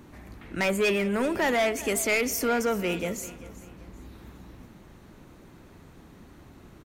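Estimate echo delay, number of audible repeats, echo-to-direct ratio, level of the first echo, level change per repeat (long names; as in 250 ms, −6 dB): 389 ms, 2, −17.0 dB, −17.5 dB, −9.5 dB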